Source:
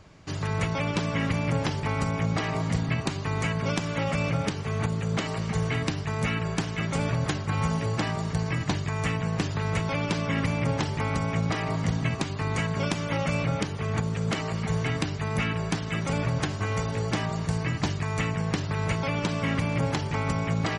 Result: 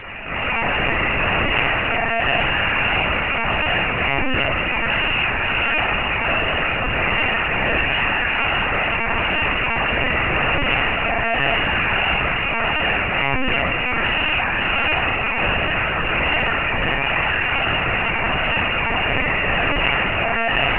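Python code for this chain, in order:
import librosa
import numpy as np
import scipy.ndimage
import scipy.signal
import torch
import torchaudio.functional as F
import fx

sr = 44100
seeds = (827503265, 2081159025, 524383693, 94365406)

y = fx.envelope_flatten(x, sr, power=0.3)
y = fx.highpass(y, sr, hz=140.0, slope=6)
y = fx.echo_feedback(y, sr, ms=63, feedback_pct=23, wet_db=-4.5)
y = fx.rev_schroeder(y, sr, rt60_s=0.73, comb_ms=25, drr_db=-9.0)
y = fx.freq_invert(y, sr, carrier_hz=2900)
y = fx.lpc_vocoder(y, sr, seeds[0], excitation='pitch_kept', order=10)
y = fx.env_flatten(y, sr, amount_pct=50)
y = y * librosa.db_to_amplitude(-1.5)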